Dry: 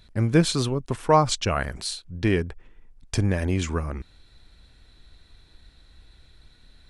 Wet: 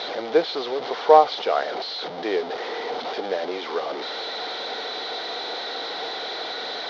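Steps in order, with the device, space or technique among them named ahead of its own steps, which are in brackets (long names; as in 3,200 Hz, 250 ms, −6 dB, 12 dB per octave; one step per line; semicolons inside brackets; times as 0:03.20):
digital answering machine (band-pass filter 390–3,200 Hz; linear delta modulator 32 kbit/s, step −26.5 dBFS; loudspeaker in its box 410–4,400 Hz, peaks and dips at 460 Hz +8 dB, 750 Hz +8 dB, 1,100 Hz −4 dB, 1,700 Hz −6 dB, 2,600 Hz −10 dB, 3,700 Hz +3 dB)
level +3 dB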